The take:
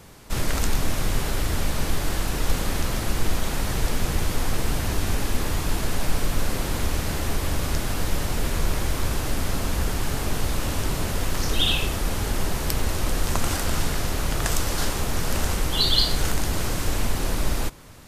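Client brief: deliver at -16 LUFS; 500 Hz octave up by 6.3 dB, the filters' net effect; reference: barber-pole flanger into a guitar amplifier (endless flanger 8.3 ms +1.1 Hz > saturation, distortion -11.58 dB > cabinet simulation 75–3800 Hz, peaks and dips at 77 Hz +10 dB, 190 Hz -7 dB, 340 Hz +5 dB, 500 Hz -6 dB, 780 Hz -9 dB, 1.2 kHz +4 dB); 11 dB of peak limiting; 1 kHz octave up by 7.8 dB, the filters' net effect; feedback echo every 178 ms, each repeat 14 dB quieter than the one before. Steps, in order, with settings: peaking EQ 500 Hz +9 dB; peaking EQ 1 kHz +8.5 dB; peak limiter -12 dBFS; feedback delay 178 ms, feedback 20%, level -14 dB; endless flanger 8.3 ms +1.1 Hz; saturation -24 dBFS; cabinet simulation 75–3800 Hz, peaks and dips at 77 Hz +10 dB, 190 Hz -7 dB, 340 Hz +5 dB, 500 Hz -6 dB, 780 Hz -9 dB, 1.2 kHz +4 dB; trim +16 dB

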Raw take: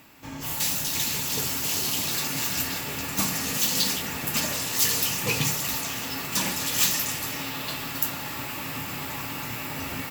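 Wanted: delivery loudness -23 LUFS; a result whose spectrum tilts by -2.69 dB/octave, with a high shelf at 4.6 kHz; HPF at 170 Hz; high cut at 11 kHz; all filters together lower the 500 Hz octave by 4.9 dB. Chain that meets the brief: high-pass 170 Hz; low-pass 11 kHz; peaking EQ 500 Hz -6 dB; treble shelf 4.6 kHz -8.5 dB; trim +8.5 dB

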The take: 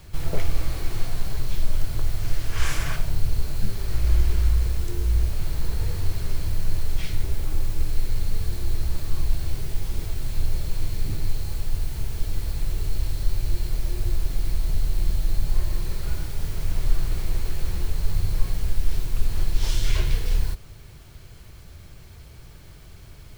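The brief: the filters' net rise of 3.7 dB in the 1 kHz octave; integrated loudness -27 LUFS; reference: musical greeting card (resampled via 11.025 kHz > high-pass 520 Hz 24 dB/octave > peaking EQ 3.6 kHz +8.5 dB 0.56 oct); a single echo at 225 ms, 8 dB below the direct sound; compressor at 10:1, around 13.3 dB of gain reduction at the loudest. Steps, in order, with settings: peaking EQ 1 kHz +4.5 dB; compression 10:1, threshold -25 dBFS; delay 225 ms -8 dB; resampled via 11.025 kHz; high-pass 520 Hz 24 dB/octave; peaking EQ 3.6 kHz +8.5 dB 0.56 oct; trim +18.5 dB

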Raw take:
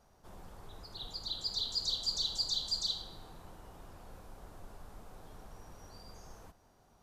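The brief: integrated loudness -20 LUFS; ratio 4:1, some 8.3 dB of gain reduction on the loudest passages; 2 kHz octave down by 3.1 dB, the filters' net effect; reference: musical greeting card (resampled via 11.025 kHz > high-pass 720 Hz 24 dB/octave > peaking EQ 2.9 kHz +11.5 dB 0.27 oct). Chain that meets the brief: peaking EQ 2 kHz -7.5 dB; compression 4:1, threshold -41 dBFS; resampled via 11.025 kHz; high-pass 720 Hz 24 dB/octave; peaking EQ 2.9 kHz +11.5 dB 0.27 oct; trim +22 dB

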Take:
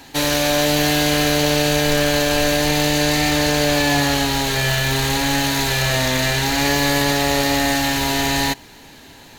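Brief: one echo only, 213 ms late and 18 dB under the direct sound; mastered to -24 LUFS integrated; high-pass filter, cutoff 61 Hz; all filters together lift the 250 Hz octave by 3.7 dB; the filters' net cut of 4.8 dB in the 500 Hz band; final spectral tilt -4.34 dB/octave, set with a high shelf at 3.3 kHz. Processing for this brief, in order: high-pass 61 Hz; peaking EQ 250 Hz +7 dB; peaking EQ 500 Hz -7.5 dB; treble shelf 3.3 kHz -5.5 dB; delay 213 ms -18 dB; trim -6 dB

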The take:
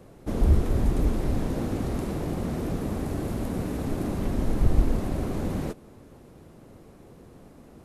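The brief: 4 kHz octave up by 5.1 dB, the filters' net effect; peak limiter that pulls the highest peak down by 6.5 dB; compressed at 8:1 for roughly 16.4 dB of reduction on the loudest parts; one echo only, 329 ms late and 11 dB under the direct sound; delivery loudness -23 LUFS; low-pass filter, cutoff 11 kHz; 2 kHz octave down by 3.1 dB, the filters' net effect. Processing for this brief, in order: low-pass 11 kHz; peaking EQ 2 kHz -6 dB; peaking EQ 4 kHz +8 dB; compression 8:1, threshold -31 dBFS; peak limiter -29 dBFS; delay 329 ms -11 dB; trim +16.5 dB

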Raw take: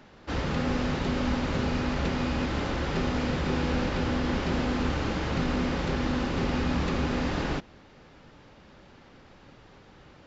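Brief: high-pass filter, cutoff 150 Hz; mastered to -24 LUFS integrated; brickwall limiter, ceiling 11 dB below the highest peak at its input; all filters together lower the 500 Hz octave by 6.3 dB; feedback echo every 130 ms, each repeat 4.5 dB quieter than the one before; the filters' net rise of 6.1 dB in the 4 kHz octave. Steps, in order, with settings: high-pass 150 Hz; peaking EQ 500 Hz -8 dB; peaking EQ 4 kHz +8 dB; peak limiter -29 dBFS; feedback delay 130 ms, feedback 60%, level -4.5 dB; trim +11.5 dB

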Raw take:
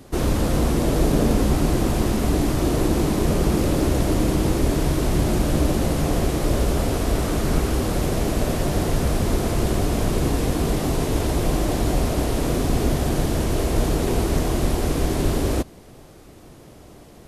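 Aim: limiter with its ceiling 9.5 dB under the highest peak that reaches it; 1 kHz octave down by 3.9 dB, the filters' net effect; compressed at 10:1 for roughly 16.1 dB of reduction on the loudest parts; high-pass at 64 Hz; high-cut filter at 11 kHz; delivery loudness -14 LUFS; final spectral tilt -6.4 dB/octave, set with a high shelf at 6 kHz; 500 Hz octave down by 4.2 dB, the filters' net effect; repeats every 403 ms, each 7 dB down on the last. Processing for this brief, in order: high-pass 64 Hz; low-pass 11 kHz; peaking EQ 500 Hz -5 dB; peaking EQ 1 kHz -3 dB; treble shelf 6 kHz -7.5 dB; compression 10:1, threshold -35 dBFS; peak limiter -34.5 dBFS; feedback delay 403 ms, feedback 45%, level -7 dB; trim +28.5 dB

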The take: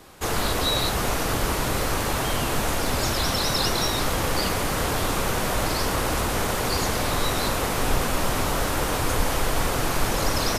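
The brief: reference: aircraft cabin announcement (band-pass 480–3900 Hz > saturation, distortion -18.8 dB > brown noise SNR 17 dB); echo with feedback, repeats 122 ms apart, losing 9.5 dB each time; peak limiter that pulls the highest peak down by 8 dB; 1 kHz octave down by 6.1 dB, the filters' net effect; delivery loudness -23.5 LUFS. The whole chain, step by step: peaking EQ 1 kHz -7.5 dB; peak limiter -17.5 dBFS; band-pass 480–3900 Hz; feedback delay 122 ms, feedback 33%, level -9.5 dB; saturation -26 dBFS; brown noise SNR 17 dB; trim +9.5 dB

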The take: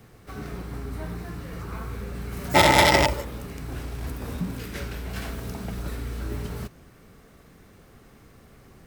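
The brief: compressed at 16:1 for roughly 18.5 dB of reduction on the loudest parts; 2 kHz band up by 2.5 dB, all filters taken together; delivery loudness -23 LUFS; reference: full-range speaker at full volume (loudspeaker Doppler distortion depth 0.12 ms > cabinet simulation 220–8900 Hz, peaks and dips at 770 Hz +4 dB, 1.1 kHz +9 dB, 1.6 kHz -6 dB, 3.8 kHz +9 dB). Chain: peaking EQ 2 kHz +3.5 dB; compression 16:1, threshold -30 dBFS; loudspeaker Doppler distortion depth 0.12 ms; cabinet simulation 220–8900 Hz, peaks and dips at 770 Hz +4 dB, 1.1 kHz +9 dB, 1.6 kHz -6 dB, 3.8 kHz +9 dB; trim +14.5 dB

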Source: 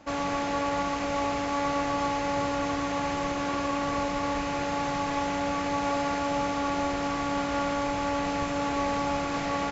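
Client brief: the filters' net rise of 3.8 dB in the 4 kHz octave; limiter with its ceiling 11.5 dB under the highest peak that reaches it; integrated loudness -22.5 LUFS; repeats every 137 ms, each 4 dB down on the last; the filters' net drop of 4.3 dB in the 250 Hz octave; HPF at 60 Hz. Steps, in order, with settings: high-pass 60 Hz; peaking EQ 250 Hz -5 dB; peaking EQ 4 kHz +5 dB; peak limiter -27.5 dBFS; feedback delay 137 ms, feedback 63%, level -4 dB; trim +12 dB

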